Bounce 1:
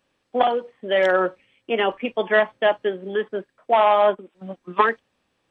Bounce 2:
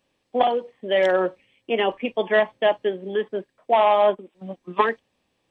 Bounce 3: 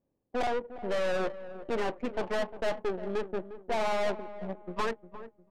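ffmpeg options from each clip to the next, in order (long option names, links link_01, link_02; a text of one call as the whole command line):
ffmpeg -i in.wav -af "equalizer=frequency=1400:width=2.8:gain=-8" out.wav
ffmpeg -i in.wav -af "aeval=exprs='(tanh(22.4*val(0)+0.65)-tanh(0.65))/22.4':channel_layout=same,aecho=1:1:354|708|1062|1416:0.251|0.0955|0.0363|0.0138,adynamicsmooth=sensitivity=3:basefreq=590" out.wav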